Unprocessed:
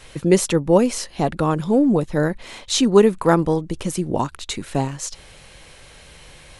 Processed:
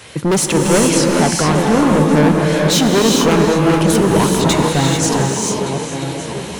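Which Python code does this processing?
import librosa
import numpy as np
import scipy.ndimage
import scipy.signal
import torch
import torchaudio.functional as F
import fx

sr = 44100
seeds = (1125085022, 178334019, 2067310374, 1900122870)

p1 = fx.reverse_delay_fb(x, sr, ms=585, feedback_pct=60, wet_db=-12.0)
p2 = scipy.signal.sosfilt(scipy.signal.butter(4, 75.0, 'highpass', fs=sr, output='sos'), p1)
p3 = fx.rider(p2, sr, range_db=3, speed_s=0.5)
p4 = p2 + F.gain(torch.from_numpy(p3), 0.0).numpy()
p5 = fx.fold_sine(p4, sr, drive_db=7, ceiling_db=3.0)
p6 = fx.wow_flutter(p5, sr, seeds[0], rate_hz=2.1, depth_cents=33.0)
p7 = np.clip(p6, -10.0 ** (-3.0 / 20.0), 10.0 ** (-3.0 / 20.0))
p8 = fx.comb_fb(p7, sr, f0_hz=110.0, decay_s=1.8, harmonics='all', damping=0.0, mix_pct=50)
p9 = fx.rev_gated(p8, sr, seeds[1], gate_ms=470, shape='rising', drr_db=0.0)
y = F.gain(torch.from_numpy(p9), -3.0).numpy()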